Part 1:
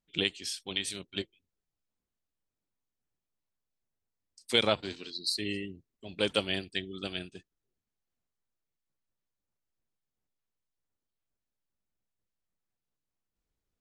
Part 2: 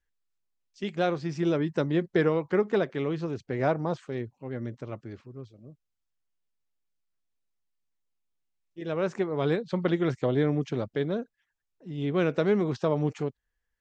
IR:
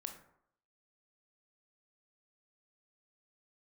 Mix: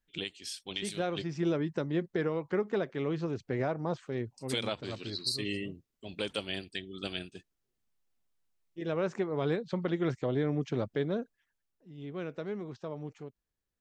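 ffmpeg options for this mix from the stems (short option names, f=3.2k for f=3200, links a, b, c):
-filter_complex "[0:a]volume=-2.5dB[a];[1:a]volume=-3.5dB,afade=t=out:st=11.51:d=0.26:silence=0.316228[b];[a][b]amix=inputs=2:normalize=0,dynaudnorm=f=940:g=7:m=3dB,alimiter=limit=-20dB:level=0:latency=1:release=350"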